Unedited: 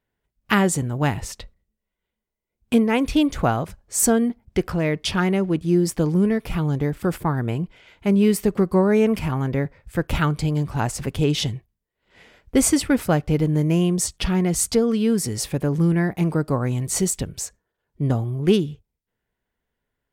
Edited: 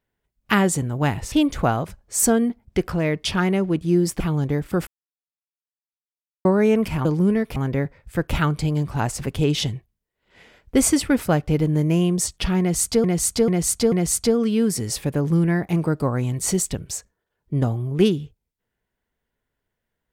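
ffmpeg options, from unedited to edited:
-filter_complex "[0:a]asplit=10[s0][s1][s2][s3][s4][s5][s6][s7][s8][s9];[s0]atrim=end=1.322[s10];[s1]atrim=start=3.118:end=6.002[s11];[s2]atrim=start=6.508:end=7.18,asetpts=PTS-STARTPTS,afade=t=out:st=0.668:d=0.004:c=hsin[s12];[s3]atrim=start=7.18:end=8.76,asetpts=PTS-STARTPTS,volume=0[s13];[s4]atrim=start=8.76:end=9.362,asetpts=PTS-STARTPTS,afade=t=in:d=0.004:c=hsin[s14];[s5]atrim=start=5.998:end=6.512[s15];[s6]atrim=start=9.358:end=14.842[s16];[s7]atrim=start=14.398:end=14.842[s17];[s8]atrim=start=14.398:end=14.842[s18];[s9]atrim=start=14.398[s19];[s10][s11]acrossfade=d=0.004:c1=hsin:c2=hsin[s20];[s12][s13][s14]concat=n=3:v=0:a=1[s21];[s20][s21]acrossfade=d=0.004:c1=hsin:c2=hsin[s22];[s22][s15]acrossfade=d=0.004:c1=hsin:c2=hsin[s23];[s23][s16]acrossfade=d=0.004:c1=hsin:c2=hsin[s24];[s24][s17]acrossfade=d=0.004:c1=hsin:c2=hsin[s25];[s25][s18]acrossfade=d=0.004:c1=hsin:c2=hsin[s26];[s26][s19]acrossfade=d=0.004:c1=hsin:c2=hsin"

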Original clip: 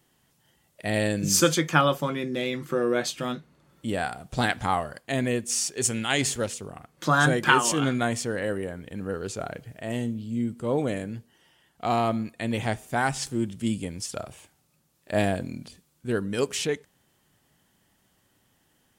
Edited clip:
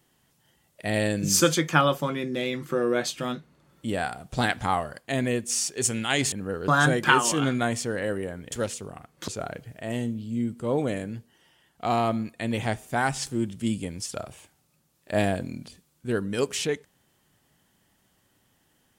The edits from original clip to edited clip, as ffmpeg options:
-filter_complex "[0:a]asplit=5[s0][s1][s2][s3][s4];[s0]atrim=end=6.322[s5];[s1]atrim=start=8.918:end=9.282[s6];[s2]atrim=start=7.078:end=8.922[s7];[s3]atrim=start=6.318:end=7.082[s8];[s4]atrim=start=9.278[s9];[s5][s6]acrossfade=d=0.004:c1=hsin:c2=hsin[s10];[s10][s7]acrossfade=d=0.004:c1=hsin:c2=hsin[s11];[s11][s8]acrossfade=d=0.004:c1=hsin:c2=hsin[s12];[s12][s9]acrossfade=d=0.004:c1=hsin:c2=hsin"

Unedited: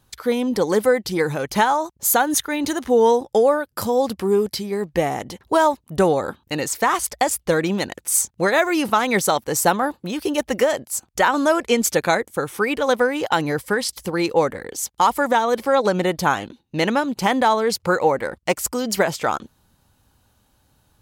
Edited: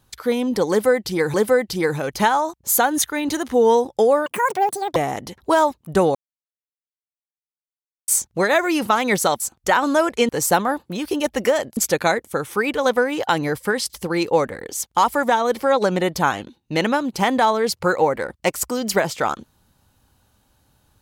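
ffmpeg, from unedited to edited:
-filter_complex "[0:a]asplit=9[s0][s1][s2][s3][s4][s5][s6][s7][s8];[s0]atrim=end=1.342[s9];[s1]atrim=start=0.698:end=3.624[s10];[s2]atrim=start=3.62:end=4.99,asetpts=PTS-STARTPTS,asetrate=86436,aresample=44100[s11];[s3]atrim=start=4.986:end=6.18,asetpts=PTS-STARTPTS,afade=t=out:st=1.19:d=0.004:c=hsin[s12];[s4]atrim=start=6.18:end=8.11,asetpts=PTS-STARTPTS,volume=0[s13];[s5]atrim=start=8.11:end=9.432,asetpts=PTS-STARTPTS,afade=t=in:d=0.004:c=hsin[s14];[s6]atrim=start=10.908:end=11.802[s15];[s7]atrim=start=9.428:end=10.912[s16];[s8]atrim=start=11.798[s17];[s9][s10]acrossfade=d=0.004:c1=hsin:c2=hsin[s18];[s18][s11]acrossfade=d=0.004:c1=hsin:c2=hsin[s19];[s12][s13][s14]concat=n=3:v=0:a=1[s20];[s19][s20]acrossfade=d=0.004:c1=hsin:c2=hsin[s21];[s21][s15]acrossfade=d=0.004:c1=hsin:c2=hsin[s22];[s22][s16]acrossfade=d=0.004:c1=hsin:c2=hsin[s23];[s23][s17]acrossfade=d=0.004:c1=hsin:c2=hsin"

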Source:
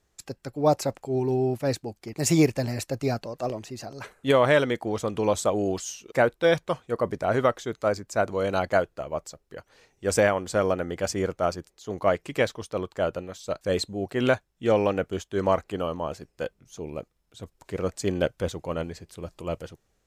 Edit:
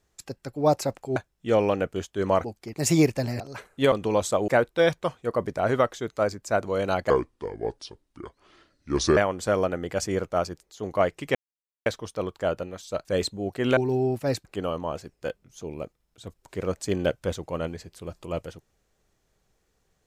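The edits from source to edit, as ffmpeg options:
-filter_complex "[0:a]asplit=11[s0][s1][s2][s3][s4][s5][s6][s7][s8][s9][s10];[s0]atrim=end=1.162[s11];[s1]atrim=start=14.328:end=15.612[s12];[s2]atrim=start=1.838:end=2.802[s13];[s3]atrim=start=3.858:end=4.382[s14];[s4]atrim=start=5.048:end=5.612[s15];[s5]atrim=start=6.128:end=8.754[s16];[s6]atrim=start=8.75:end=10.24,asetpts=PTS-STARTPTS,asetrate=31752,aresample=44100,atrim=end_sample=91262,asetpts=PTS-STARTPTS[s17];[s7]atrim=start=10.236:end=12.42,asetpts=PTS-STARTPTS,afade=t=out:st=2.18:d=0.004:c=hsin,apad=pad_dur=0.51[s18];[s8]atrim=start=12.42:end=14.332,asetpts=PTS-STARTPTS,afade=t=in:d=0.004:c=hsin[s19];[s9]atrim=start=1.158:end=1.842[s20];[s10]atrim=start=15.608[s21];[s11][s12]acrossfade=d=0.004:c1=hsin:c2=hsin[s22];[s22][s13]acrossfade=d=0.004:c1=hsin:c2=hsin[s23];[s23][s14]acrossfade=d=0.004:c1=hsin:c2=hsin[s24];[s24][s15]acrossfade=d=0.004:c1=hsin:c2=hsin[s25];[s25][s16]acrossfade=d=0.004:c1=hsin:c2=hsin[s26];[s26][s17]acrossfade=d=0.004:c1=hsin:c2=hsin[s27];[s18][s19]concat=n=2:v=0:a=1[s28];[s27][s28]acrossfade=d=0.004:c1=hsin:c2=hsin[s29];[s29][s20]acrossfade=d=0.004:c1=hsin:c2=hsin[s30];[s30][s21]acrossfade=d=0.004:c1=hsin:c2=hsin"

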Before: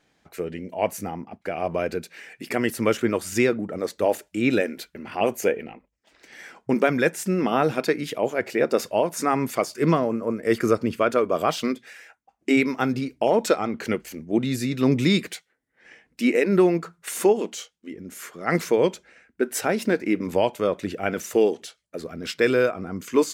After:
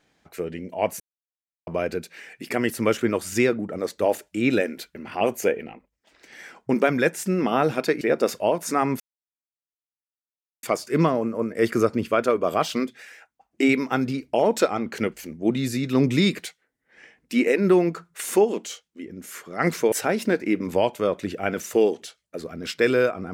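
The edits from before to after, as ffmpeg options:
-filter_complex "[0:a]asplit=6[s0][s1][s2][s3][s4][s5];[s0]atrim=end=1,asetpts=PTS-STARTPTS,afade=t=out:st=0.996:d=0.004:c=hsin[s6];[s1]atrim=start=1:end=1.67,asetpts=PTS-STARTPTS,volume=0[s7];[s2]atrim=start=1.67:end=8.012,asetpts=PTS-STARTPTS,afade=t=in:d=0.004:c=hsin[s8];[s3]atrim=start=8.518:end=9.51,asetpts=PTS-STARTPTS,afade=t=out:st=0.988:d=0.004:c=hsin,apad=pad_dur=1.63[s9];[s4]atrim=start=9.51:end=18.802,asetpts=PTS-STARTPTS,afade=t=in:d=0.004:c=hsin[s10];[s5]atrim=start=19.518[s11];[s6][s7][s8]concat=n=3:v=0:a=1[s12];[s9][s10]concat=n=2:v=0:a=1[s13];[s12][s13]acrossfade=d=0.004:c1=hsin:c2=hsin[s14];[s14][s11]acrossfade=d=0.004:c1=hsin:c2=hsin"

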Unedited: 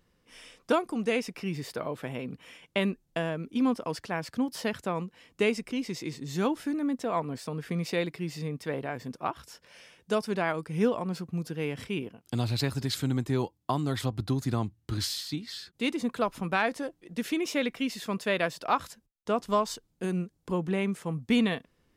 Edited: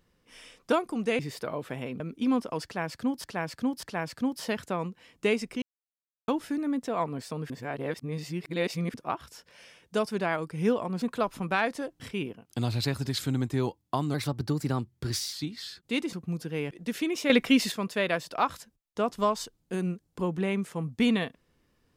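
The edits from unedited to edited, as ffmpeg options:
-filter_complex "[0:a]asplit=17[s0][s1][s2][s3][s4][s5][s6][s7][s8][s9][s10][s11][s12][s13][s14][s15][s16];[s0]atrim=end=1.192[s17];[s1]atrim=start=1.518:end=2.332[s18];[s2]atrim=start=3.338:end=4.582[s19];[s3]atrim=start=3.988:end=4.582[s20];[s4]atrim=start=3.988:end=5.78,asetpts=PTS-STARTPTS,afade=t=out:st=1.788:d=0.004:c=hsin[s21];[s5]atrim=start=5.78:end=6.44,asetpts=PTS-STARTPTS,volume=0[s22];[s6]atrim=start=6.44:end=7.662,asetpts=PTS-STARTPTS,afade=t=in:d=0.004:c=hsin[s23];[s7]atrim=start=7.658:end=9.102,asetpts=PTS-STARTPTS,areverse[s24];[s8]atrim=start=9.098:end=11.182[s25];[s9]atrim=start=16.028:end=17.012[s26];[s10]atrim=start=11.758:end=13.904[s27];[s11]atrim=start=13.9:end=15.23,asetpts=PTS-STARTPTS,asetrate=49392,aresample=44100[s28];[s12]atrim=start=15.226:end=16.032[s29];[s13]atrim=start=11.178:end=11.762[s30];[s14]atrim=start=17.008:end=17.602[s31];[s15]atrim=start=17.598:end=18.022,asetpts=PTS-STARTPTS,volume=2.82[s32];[s16]atrim=start=18.018[s33];[s17][s18]acrossfade=d=0.004:c1=hsin:c2=hsin[s34];[s34][s19]acrossfade=d=0.004:c1=hsin:c2=hsin[s35];[s35][s20]acrossfade=d=0.004:c1=hsin:c2=hsin[s36];[s21][s22][s23]concat=n=3:v=0:a=1[s37];[s36][s37]acrossfade=d=0.004:c1=hsin:c2=hsin[s38];[s38][s24]acrossfade=d=0.004:c1=hsin:c2=hsin[s39];[s39][s25]acrossfade=d=0.004:c1=hsin:c2=hsin[s40];[s40][s26]acrossfade=d=0.004:c1=hsin:c2=hsin[s41];[s41][s27]acrossfade=d=0.004:c1=hsin:c2=hsin[s42];[s42][s28]acrossfade=d=0.004:c1=hsin:c2=hsin[s43];[s43][s29]acrossfade=d=0.004:c1=hsin:c2=hsin[s44];[s44][s30]acrossfade=d=0.004:c1=hsin:c2=hsin[s45];[s45][s31]acrossfade=d=0.004:c1=hsin:c2=hsin[s46];[s46][s32]acrossfade=d=0.004:c1=hsin:c2=hsin[s47];[s47][s33]acrossfade=d=0.004:c1=hsin:c2=hsin"

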